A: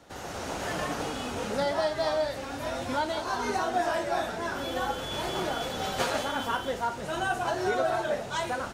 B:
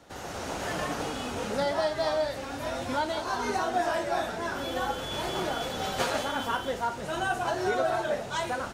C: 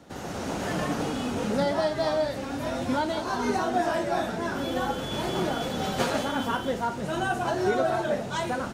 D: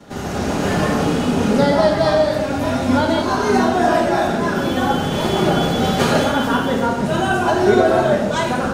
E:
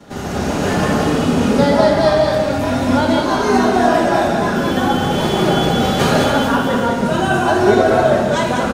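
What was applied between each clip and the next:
no processing that can be heard
parametric band 200 Hz +9 dB 1.8 octaves
convolution reverb RT60 0.95 s, pre-delay 5 ms, DRR −10.5 dB; level −1 dB
single-tap delay 199 ms −5.5 dB; level +1 dB

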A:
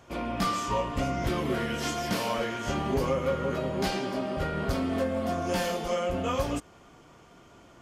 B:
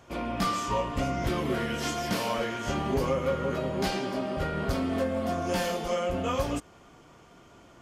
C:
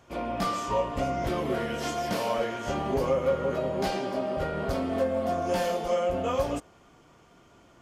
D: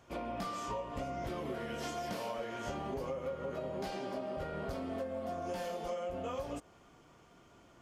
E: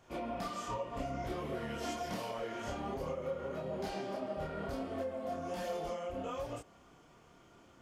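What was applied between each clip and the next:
no processing that can be heard
dynamic equaliser 610 Hz, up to +7 dB, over −43 dBFS, Q 1.1; level −3 dB
downward compressor, threshold −32 dBFS, peak gain reduction 11 dB; level −4 dB
multi-voice chorus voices 2, 1.3 Hz, delay 28 ms, depth 3 ms; level +3 dB

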